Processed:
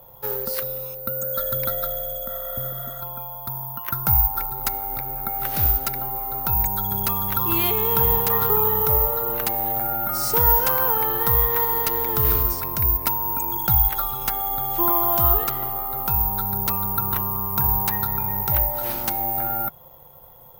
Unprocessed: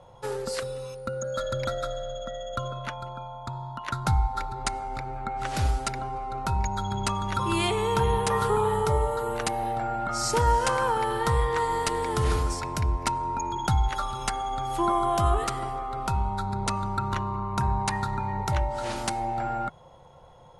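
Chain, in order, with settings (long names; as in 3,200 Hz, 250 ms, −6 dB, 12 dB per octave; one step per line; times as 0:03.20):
0:02.31–0:02.99: healed spectral selection 650–9,300 Hz before
0:03.49–0:04.51: parametric band 3,900 Hz −8.5 dB 0.26 octaves
bad sample-rate conversion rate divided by 3×, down filtered, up zero stuff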